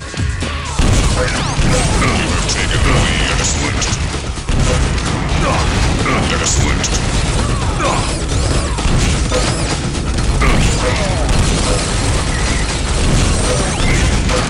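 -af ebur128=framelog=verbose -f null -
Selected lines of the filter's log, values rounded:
Integrated loudness:
  I:         -15.2 LUFS
  Threshold: -25.2 LUFS
Loudness range:
  LRA:         1.1 LU
  Threshold: -35.2 LUFS
  LRA low:   -15.6 LUFS
  LRA high:  -14.5 LUFS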